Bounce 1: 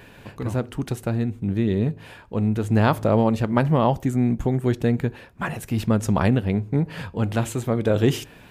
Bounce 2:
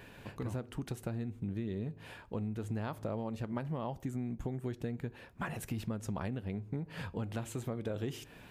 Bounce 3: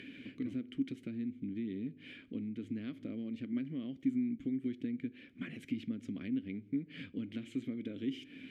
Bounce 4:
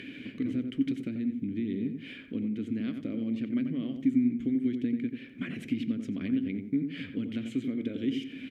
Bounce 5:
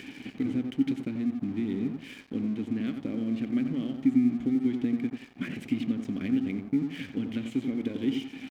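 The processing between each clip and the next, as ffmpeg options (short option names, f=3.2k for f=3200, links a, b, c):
-af "acompressor=threshold=-28dB:ratio=6,volume=-6.5dB"
-filter_complex "[0:a]acompressor=mode=upward:threshold=-41dB:ratio=2.5,asplit=3[a][b][c];[a]bandpass=f=270:t=q:w=8,volume=0dB[d];[b]bandpass=f=2.29k:t=q:w=8,volume=-6dB[e];[c]bandpass=f=3.01k:t=q:w=8,volume=-9dB[f];[d][e][f]amix=inputs=3:normalize=0,volume=10.5dB"
-filter_complex "[0:a]asplit=2[a][b];[b]adelay=89,lowpass=f=1.7k:p=1,volume=-6dB,asplit=2[c][d];[d]adelay=89,lowpass=f=1.7k:p=1,volume=0.32,asplit=2[e][f];[f]adelay=89,lowpass=f=1.7k:p=1,volume=0.32,asplit=2[g][h];[h]adelay=89,lowpass=f=1.7k:p=1,volume=0.32[i];[a][c][e][g][i]amix=inputs=5:normalize=0,volume=6.5dB"
-af "aeval=exprs='sgn(val(0))*max(abs(val(0))-0.00282,0)':c=same,volume=2.5dB"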